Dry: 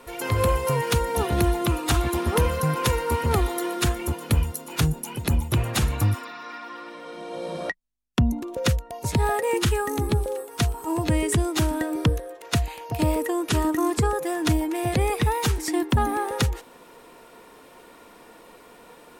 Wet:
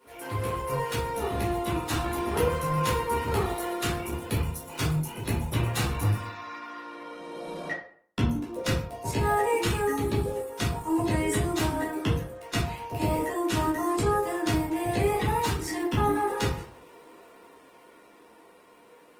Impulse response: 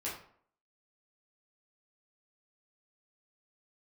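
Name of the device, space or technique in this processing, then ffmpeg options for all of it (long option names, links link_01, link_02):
far-field microphone of a smart speaker: -filter_complex "[1:a]atrim=start_sample=2205[link_01];[0:a][link_01]afir=irnorm=-1:irlink=0,highpass=100,dynaudnorm=framelen=170:gausssize=21:maxgain=4dB,volume=-8dB" -ar 48000 -c:a libopus -b:a 20k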